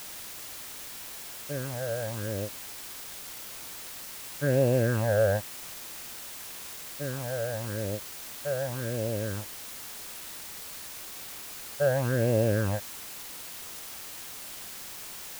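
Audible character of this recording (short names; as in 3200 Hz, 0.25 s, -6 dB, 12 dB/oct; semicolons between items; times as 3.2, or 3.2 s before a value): phasing stages 8, 0.91 Hz, lowest notch 290–1400 Hz; a quantiser's noise floor 8-bit, dither triangular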